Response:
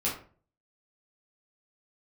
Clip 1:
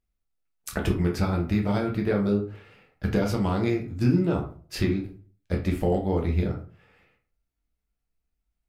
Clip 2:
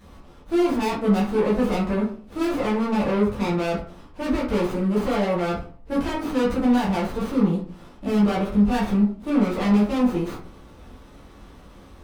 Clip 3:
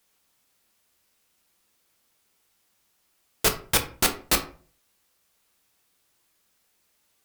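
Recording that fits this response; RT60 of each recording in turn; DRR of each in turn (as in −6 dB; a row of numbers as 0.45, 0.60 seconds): 2; 0.40, 0.40, 0.40 seconds; 0.0, −7.5, 5.0 decibels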